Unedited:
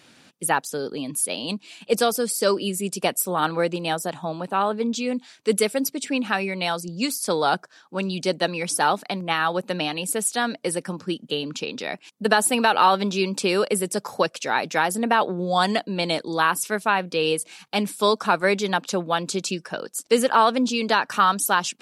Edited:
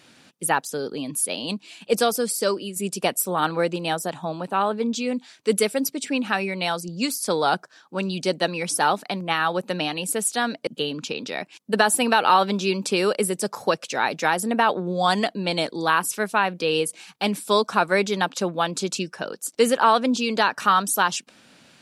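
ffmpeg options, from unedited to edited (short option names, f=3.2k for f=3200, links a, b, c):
-filter_complex "[0:a]asplit=3[a][b][c];[a]atrim=end=2.76,asetpts=PTS-STARTPTS,afade=t=out:st=2.32:d=0.44:silence=0.354813[d];[b]atrim=start=2.76:end=10.672,asetpts=PTS-STARTPTS,afade=t=in:d=0.004:c=hsin:silence=0.354813[e];[c]atrim=start=11.188[f];[d][e]concat=n=2:v=0:a=1[g];[g][f]acrossfade=d=0.004:c1=hsin:c2=hsin"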